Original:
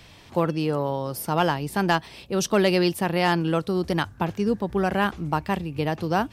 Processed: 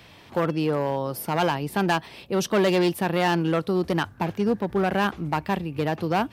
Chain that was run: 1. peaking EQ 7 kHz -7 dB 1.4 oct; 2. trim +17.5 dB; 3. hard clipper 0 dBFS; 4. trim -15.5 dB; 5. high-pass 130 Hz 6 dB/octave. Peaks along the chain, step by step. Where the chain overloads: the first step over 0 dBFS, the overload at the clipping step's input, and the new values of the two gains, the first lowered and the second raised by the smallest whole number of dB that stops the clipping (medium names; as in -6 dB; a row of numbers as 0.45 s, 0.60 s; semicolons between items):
-9.5 dBFS, +8.0 dBFS, 0.0 dBFS, -15.5 dBFS, -12.0 dBFS; step 2, 8.0 dB; step 2 +9.5 dB, step 4 -7.5 dB